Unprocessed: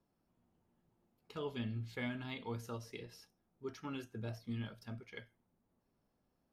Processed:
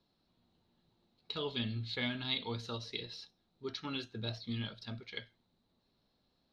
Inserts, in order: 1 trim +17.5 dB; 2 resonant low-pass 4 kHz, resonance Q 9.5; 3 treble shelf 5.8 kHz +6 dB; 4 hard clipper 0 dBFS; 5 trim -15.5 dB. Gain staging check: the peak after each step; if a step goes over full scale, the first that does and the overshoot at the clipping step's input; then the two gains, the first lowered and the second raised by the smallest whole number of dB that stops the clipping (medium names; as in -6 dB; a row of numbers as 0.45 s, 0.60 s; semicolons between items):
-11.5 dBFS, -6.0 dBFS, -4.5 dBFS, -4.5 dBFS, -20.0 dBFS; nothing clips